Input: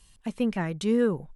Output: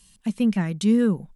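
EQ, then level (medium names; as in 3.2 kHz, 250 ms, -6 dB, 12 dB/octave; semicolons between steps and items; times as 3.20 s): peaking EQ 200 Hz +12.5 dB 0.84 oct; treble shelf 2.3 kHz +10 dB; -3.5 dB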